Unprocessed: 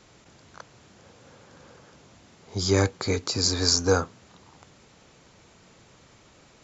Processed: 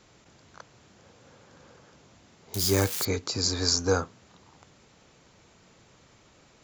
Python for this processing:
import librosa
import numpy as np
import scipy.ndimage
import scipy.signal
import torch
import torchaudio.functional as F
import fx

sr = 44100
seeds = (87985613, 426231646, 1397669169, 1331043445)

y = fx.crossing_spikes(x, sr, level_db=-18.0, at=(2.54, 3.05))
y = F.gain(torch.from_numpy(y), -3.0).numpy()